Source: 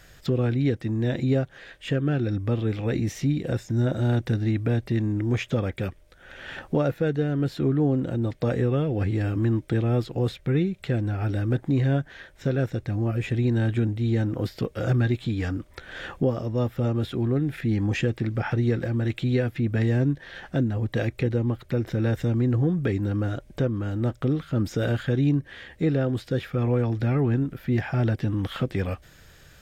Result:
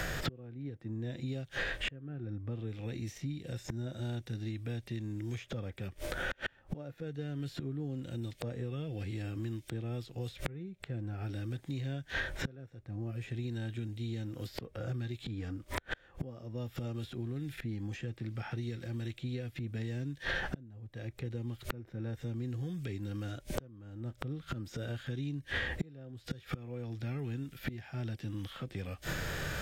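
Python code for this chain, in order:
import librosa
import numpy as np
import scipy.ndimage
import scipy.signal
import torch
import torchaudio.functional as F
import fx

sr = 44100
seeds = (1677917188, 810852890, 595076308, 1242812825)

y = fx.hpss(x, sr, part='harmonic', gain_db=8)
y = fx.gate_flip(y, sr, shuts_db=-24.0, range_db=-38)
y = fx.band_squash(y, sr, depth_pct=100)
y = y * 10.0 ** (12.0 / 20.0)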